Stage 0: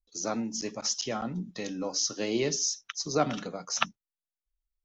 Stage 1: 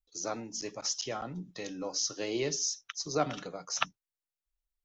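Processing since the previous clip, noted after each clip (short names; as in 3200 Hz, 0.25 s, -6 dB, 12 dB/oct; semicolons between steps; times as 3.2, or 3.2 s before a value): bell 220 Hz -10.5 dB 0.33 oct; gain -3 dB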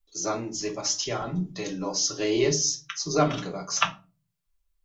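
reverb RT60 0.35 s, pre-delay 3 ms, DRR -0.5 dB; gain +4 dB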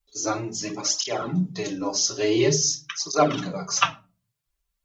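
tape flanging out of phase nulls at 0.48 Hz, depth 6.8 ms; gain +5.5 dB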